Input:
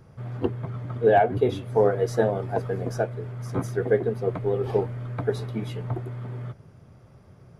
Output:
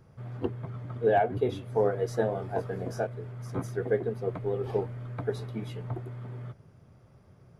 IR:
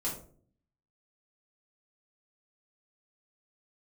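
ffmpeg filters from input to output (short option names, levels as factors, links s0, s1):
-filter_complex "[0:a]asettb=1/sr,asplit=3[s0][s1][s2];[s0]atrim=end=2.294[s3];[s1]atrim=start=2.29:end=3.07,asetpts=PTS-STARTPTS,afade=t=in:d=0.004:c=qsin,afade=t=out:st=0.776:d=0.004:c=qsin,asplit=2[s4][s5];[s5]adelay=22,volume=0.562[s6];[s4][s6]amix=inputs=2:normalize=0,atrim=end_sample=34398[s7];[s2]atrim=start=3.066[s8];[s3][s7]acrossfade=d=0.004:c1=hsin:c2=qsin[s9];[s9][s8]acrossfade=d=0.004:c1=qsin:c2=hsin,volume=0.531"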